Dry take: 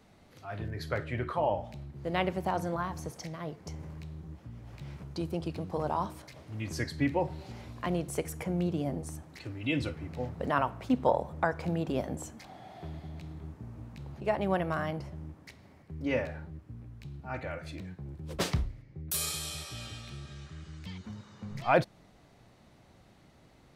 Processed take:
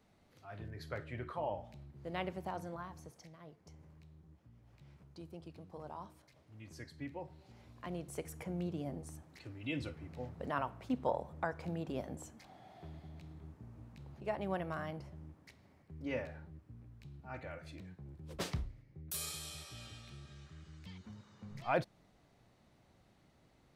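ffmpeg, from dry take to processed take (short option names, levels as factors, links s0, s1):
-af "volume=0.794,afade=t=out:st=2.31:d=1.03:silence=0.473151,afade=t=in:st=7.42:d=0.94:silence=0.421697"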